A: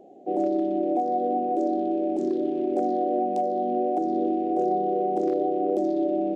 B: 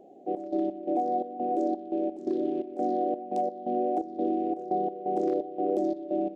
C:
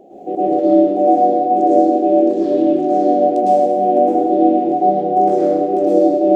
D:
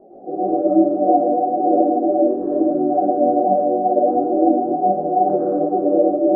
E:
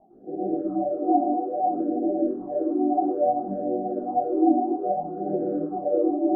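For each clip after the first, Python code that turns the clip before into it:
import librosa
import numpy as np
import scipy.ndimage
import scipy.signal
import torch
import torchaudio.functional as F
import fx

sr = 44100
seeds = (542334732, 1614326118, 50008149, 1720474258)

y1 = fx.step_gate(x, sr, bpm=86, pattern='xx.x.xx.', floor_db=-12.0, edge_ms=4.5)
y1 = y1 * librosa.db_to_amplitude(-2.5)
y2 = fx.rider(y1, sr, range_db=3, speed_s=0.5)
y2 = fx.rev_plate(y2, sr, seeds[0], rt60_s=1.5, hf_ratio=0.8, predelay_ms=95, drr_db=-9.5)
y2 = y2 * librosa.db_to_amplitude(5.5)
y3 = fx.chorus_voices(y2, sr, voices=4, hz=1.1, base_ms=20, depth_ms=4.0, mix_pct=50)
y3 = scipy.signal.sosfilt(scipy.signal.butter(8, 1500.0, 'lowpass', fs=sr, output='sos'), y3)
y4 = fx.notch(y3, sr, hz=550.0, q=12.0)
y4 = fx.phaser_stages(y4, sr, stages=6, low_hz=130.0, high_hz=1100.0, hz=0.6, feedback_pct=25)
y4 = y4 * librosa.db_to_amplitude(-3.5)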